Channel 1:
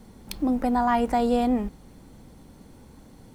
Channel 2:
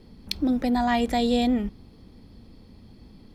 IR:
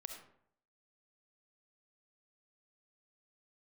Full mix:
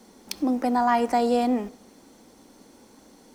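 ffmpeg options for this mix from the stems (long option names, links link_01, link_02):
-filter_complex "[0:a]highpass=frequency=240:width=0.5412,highpass=frequency=240:width=1.3066,equalizer=frequency=5800:width=1.8:gain=7,volume=-1dB,asplit=2[link_01][link_02];[link_02]volume=-8.5dB[link_03];[1:a]volume=-1,volume=-19dB[link_04];[2:a]atrim=start_sample=2205[link_05];[link_03][link_05]afir=irnorm=-1:irlink=0[link_06];[link_01][link_04][link_06]amix=inputs=3:normalize=0"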